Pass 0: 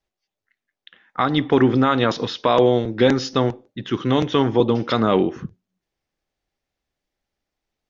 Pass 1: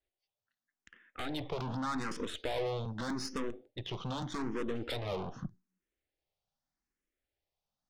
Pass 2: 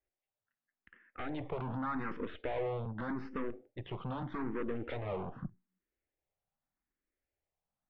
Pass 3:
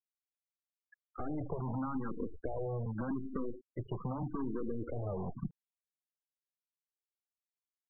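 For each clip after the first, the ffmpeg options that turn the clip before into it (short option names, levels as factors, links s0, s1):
-filter_complex "[0:a]aeval=exprs='(tanh(15.8*val(0)+0.7)-tanh(0.7))/15.8':c=same,acompressor=threshold=0.0355:ratio=2,asplit=2[s0][s1];[s1]afreqshift=0.83[s2];[s0][s2]amix=inputs=2:normalize=1,volume=0.75"
-af "lowpass=f=2400:w=0.5412,lowpass=f=2400:w=1.3066,volume=0.891"
-filter_complex "[0:a]acrossover=split=270|1100[s0][s1][s2];[s0]acompressor=threshold=0.00794:ratio=4[s3];[s1]acompressor=threshold=0.00447:ratio=4[s4];[s2]acompressor=threshold=0.00112:ratio=4[s5];[s3][s4][s5]amix=inputs=3:normalize=0,afftfilt=real='re*gte(hypot(re,im),0.00794)':imag='im*gte(hypot(re,im),0.00794)':win_size=1024:overlap=0.75,areverse,acompressor=mode=upward:threshold=0.00126:ratio=2.5,areverse,volume=2"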